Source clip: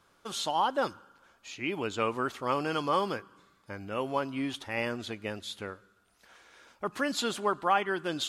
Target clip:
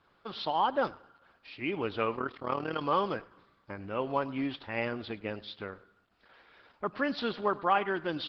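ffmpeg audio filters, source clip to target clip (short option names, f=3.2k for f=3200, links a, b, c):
-filter_complex "[0:a]aemphasis=mode=reproduction:type=cd,asplit=3[a][b][c];[a]afade=t=out:st=2.14:d=0.02[d];[b]tremolo=f=38:d=0.75,afade=t=in:st=2.14:d=0.02,afade=t=out:st=2.81:d=0.02[e];[c]afade=t=in:st=2.81:d=0.02[f];[d][e][f]amix=inputs=3:normalize=0,asplit=2[g][h];[h]aecho=0:1:103|206:0.1|0.019[i];[g][i]amix=inputs=2:normalize=0,aresample=11025,aresample=44100" -ar 48000 -c:a libopus -b:a 12k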